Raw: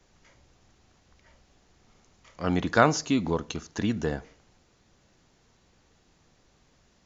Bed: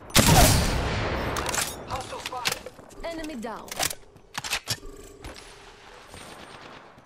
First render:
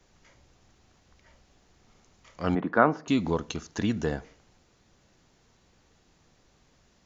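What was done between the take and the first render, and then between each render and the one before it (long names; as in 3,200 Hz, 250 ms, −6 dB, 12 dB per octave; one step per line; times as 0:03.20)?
0:02.55–0:03.08: Chebyshev band-pass filter 200–1,400 Hz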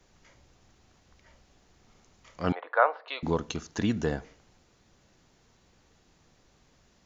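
0:02.52–0:03.23: Chebyshev band-pass filter 500–4,100 Hz, order 4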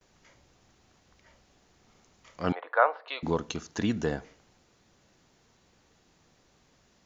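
noise gate with hold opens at −55 dBFS
low-shelf EQ 72 Hz −8 dB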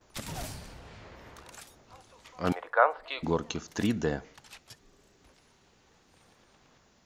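mix in bed −22 dB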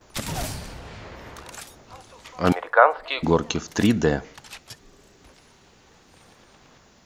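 level +9 dB
brickwall limiter −1 dBFS, peak gain reduction 2 dB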